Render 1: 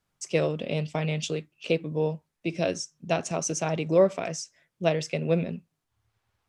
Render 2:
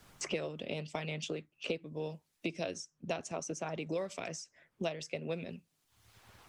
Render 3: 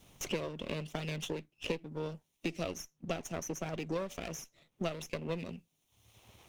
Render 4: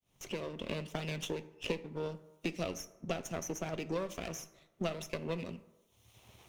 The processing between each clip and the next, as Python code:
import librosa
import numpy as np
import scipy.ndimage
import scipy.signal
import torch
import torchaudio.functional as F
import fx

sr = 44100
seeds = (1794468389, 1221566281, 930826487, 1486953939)

y1 = fx.hpss(x, sr, part='harmonic', gain_db=-7)
y1 = fx.band_squash(y1, sr, depth_pct=100)
y1 = y1 * librosa.db_to_amplitude(-8.5)
y2 = fx.lower_of_two(y1, sr, delay_ms=0.32)
y2 = y2 * librosa.db_to_amplitude(1.0)
y3 = fx.fade_in_head(y2, sr, length_s=0.56)
y3 = fx.rev_fdn(y3, sr, rt60_s=1.1, lf_ratio=0.85, hf_ratio=0.5, size_ms=46.0, drr_db=12.0)